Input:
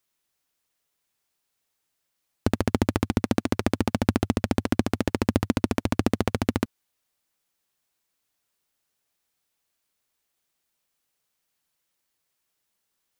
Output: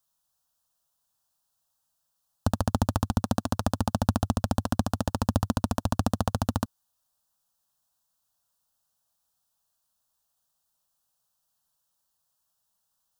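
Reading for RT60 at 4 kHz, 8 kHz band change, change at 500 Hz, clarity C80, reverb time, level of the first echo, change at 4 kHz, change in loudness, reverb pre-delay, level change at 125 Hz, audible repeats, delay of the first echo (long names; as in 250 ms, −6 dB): no reverb audible, +1.0 dB, −5.0 dB, no reverb audible, no reverb audible, no echo audible, −2.5 dB, −2.5 dB, no reverb audible, +1.0 dB, no echo audible, no echo audible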